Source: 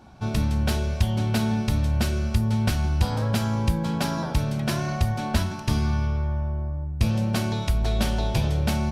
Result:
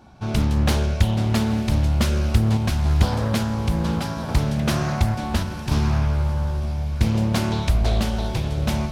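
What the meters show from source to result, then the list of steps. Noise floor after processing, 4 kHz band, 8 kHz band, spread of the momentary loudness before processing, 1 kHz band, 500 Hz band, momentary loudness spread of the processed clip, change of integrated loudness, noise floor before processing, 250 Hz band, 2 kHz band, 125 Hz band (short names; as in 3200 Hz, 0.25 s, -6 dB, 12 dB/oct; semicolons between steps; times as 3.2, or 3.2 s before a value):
-29 dBFS, +2.5 dB, +2.0 dB, 3 LU, +2.5 dB, +3.0 dB, 5 LU, +3.0 dB, -31 dBFS, +3.0 dB, +2.0 dB, +3.0 dB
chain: random-step tremolo; diffused feedback echo 0.927 s, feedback 62%, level -13.5 dB; Doppler distortion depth 0.7 ms; gain +4.5 dB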